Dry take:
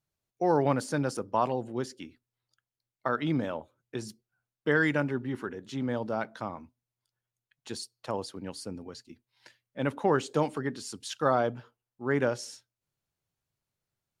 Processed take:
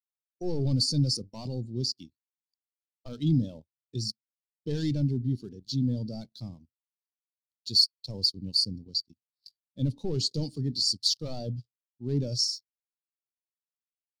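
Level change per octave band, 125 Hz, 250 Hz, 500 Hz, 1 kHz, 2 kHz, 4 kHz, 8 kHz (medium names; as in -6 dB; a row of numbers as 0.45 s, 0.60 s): +7.0 dB, 0.0 dB, -9.5 dB, under -20 dB, under -25 dB, +17.0 dB, +6.5 dB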